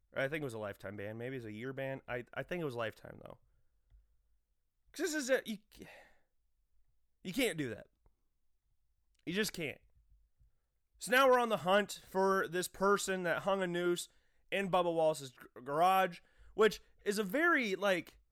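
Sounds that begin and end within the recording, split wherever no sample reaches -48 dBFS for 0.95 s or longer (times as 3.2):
4.94–5.98
7.25–7.82
9.27–9.76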